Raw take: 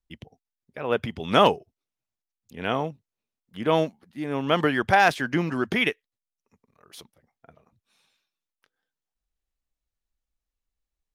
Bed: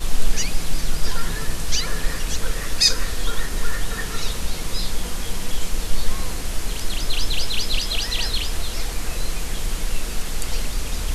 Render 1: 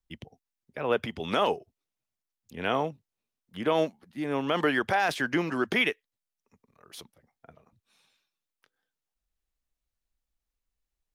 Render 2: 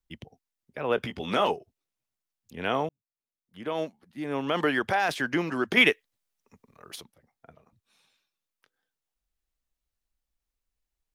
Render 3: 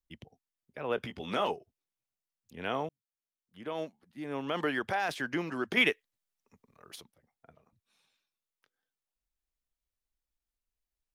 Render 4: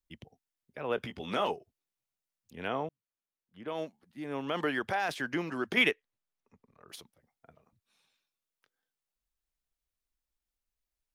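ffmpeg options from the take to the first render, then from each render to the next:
-filter_complex "[0:a]acrossover=split=250[s0][s1];[s0]acompressor=threshold=0.0112:ratio=6[s2];[s2][s1]amix=inputs=2:normalize=0,alimiter=limit=0.188:level=0:latency=1:release=32"
-filter_complex "[0:a]asettb=1/sr,asplit=3[s0][s1][s2];[s0]atrim=end=0.964[s3];[s1]atrim=start=0.96:end=1.51,asetpts=PTS-STARTPTS,afade=t=in:d=0.004:c=qsin,afade=t=out:st=0.546:d=0.004:c=qsin,asplit=2[s4][s5];[s5]adelay=16,volume=0.447[s6];[s4][s6]amix=inputs=2:normalize=0,atrim=end_sample=24255[s7];[s2]atrim=start=1.506[s8];[s3][s7]acrossfade=d=0.004:c1=hsin:c2=qsin[s9];[s9][s8]acrossfade=d=0.004:c1=qsin:c2=hsin,asettb=1/sr,asplit=3[s10][s11][s12];[s10]atrim=end=5.774[s13];[s11]atrim=start=5.77:end=6.96,asetpts=PTS-STARTPTS,afade=t=in:d=0.004:c=qsin,afade=t=out:st=1.186:d=0.004:c=qsin,acontrast=68[s14];[s12]atrim=start=6.956[s15];[s13][s14]acrossfade=d=0.004:c1=hsin:c2=qsin[s16];[s16][s15]acrossfade=d=0.004:c1=qsin:c2=hsin,asplit=2[s17][s18];[s17]atrim=end=2.89,asetpts=PTS-STARTPTS,afade=t=out:st=2.886:d=0.004:c=hsin[s19];[s18]atrim=start=2.89,asetpts=PTS-STARTPTS,afade=t=in:d=1.66[s20];[s19][s20]concat=n=2:v=0:a=1"
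-af "volume=0.501"
-filter_complex "[0:a]asettb=1/sr,asplit=3[s0][s1][s2];[s0]atrim=end=2.684[s3];[s1]atrim=start=2.68:end=3.68,asetpts=PTS-STARTPTS,afade=t=in:d=0.004:c=qsin,afade=t=out:st=0.996:d=0.004:c=qsin,highshelf=f=4300:g=-11[s4];[s2]atrim=start=3.676[s5];[s3][s4]acrossfade=d=0.004:c1=hsin:c2=qsin[s6];[s6][s5]acrossfade=d=0.004:c1=qsin:c2=hsin,asettb=1/sr,asplit=3[s7][s8][s9];[s7]atrim=end=5.914[s10];[s8]atrim=start=5.91:end=6.89,asetpts=PTS-STARTPTS,afade=t=in:d=0.004:c=qsin,afade=t=out:st=0.976:d=0.004:c=qsin,aemphasis=mode=reproduction:type=75kf[s11];[s9]atrim=start=6.886[s12];[s10][s11]acrossfade=d=0.004:c1=hsin:c2=qsin[s13];[s13][s12]acrossfade=d=0.004:c1=qsin:c2=hsin"

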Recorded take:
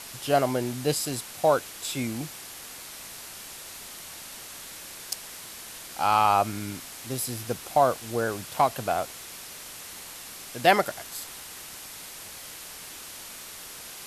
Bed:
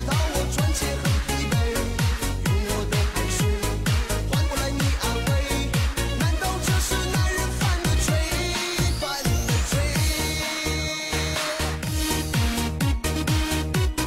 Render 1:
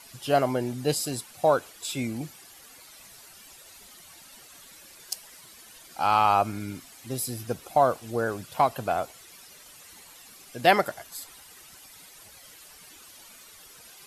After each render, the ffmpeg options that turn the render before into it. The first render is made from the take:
-af "afftdn=nr=12:nf=-42"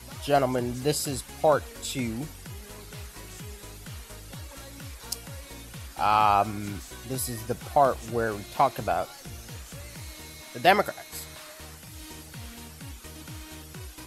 -filter_complex "[1:a]volume=0.106[s0];[0:a][s0]amix=inputs=2:normalize=0"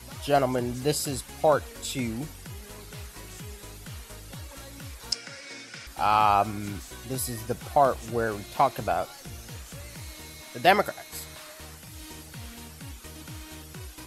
-filter_complex "[0:a]asettb=1/sr,asplit=3[s0][s1][s2];[s0]atrim=end=5.124[s3];[s1]atrim=start=5.12:end=5.87,asetpts=PTS-STARTPTS,afade=t=in:d=0.004:c=qsin,afade=t=out:st=0.746:d=0.004:c=qsin,highpass=f=150:w=0.5412,highpass=f=150:w=1.3066,equalizer=f=170:t=q:w=4:g=-8,equalizer=f=1000:t=q:w=4:g=-6,equalizer=f=1500:t=q:w=4:g=9,equalizer=f=2200:t=q:w=4:g=9,equalizer=f=5200:t=q:w=4:g=10,lowpass=f=8300:w=0.5412,lowpass=f=8300:w=1.3066[s4];[s2]atrim=start=5.866[s5];[s3][s4]acrossfade=d=0.004:c1=hsin:c2=qsin[s6];[s6][s5]acrossfade=d=0.004:c1=qsin:c2=hsin"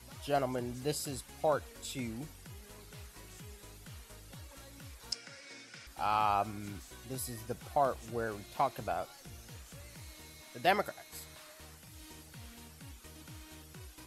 -af "volume=0.355"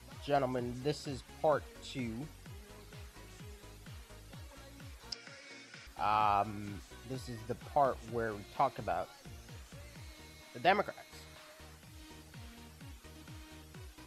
-filter_complex "[0:a]acrossover=split=6200[s0][s1];[s1]acompressor=threshold=0.00112:ratio=4:attack=1:release=60[s2];[s0][s2]amix=inputs=2:normalize=0,highshelf=f=5900:g=-5"

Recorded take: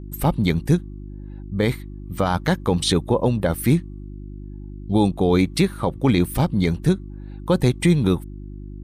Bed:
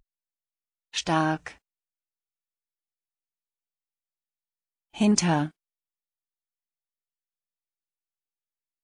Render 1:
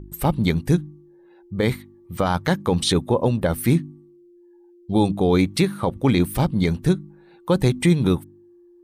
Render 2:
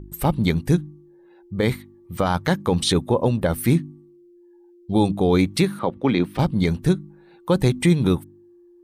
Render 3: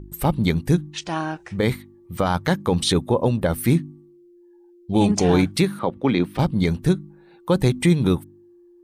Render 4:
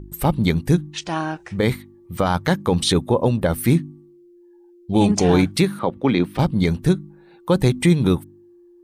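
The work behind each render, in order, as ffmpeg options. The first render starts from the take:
-af "bandreject=f=50:t=h:w=4,bandreject=f=100:t=h:w=4,bandreject=f=150:t=h:w=4,bandreject=f=200:t=h:w=4,bandreject=f=250:t=h:w=4,bandreject=f=300:t=h:w=4"
-filter_complex "[0:a]asettb=1/sr,asplit=3[s0][s1][s2];[s0]atrim=end=5.794[s3];[s1]atrim=start=5.79:end=6.39,asetpts=PTS-STARTPTS,afade=t=in:d=0.004:c=qsin,afade=t=out:st=0.596:d=0.004:c=qsin,acrossover=split=160 4700:gain=0.224 1 0.0891[s4][s5][s6];[s4][s5][s6]amix=inputs=3:normalize=0[s7];[s2]atrim=start=6.386[s8];[s3][s7]acrossfade=d=0.004:c1=hsin:c2=qsin[s9];[s9][s8]acrossfade=d=0.004:c1=qsin:c2=hsin"
-filter_complex "[1:a]volume=0.75[s0];[0:a][s0]amix=inputs=2:normalize=0"
-af "volume=1.19"

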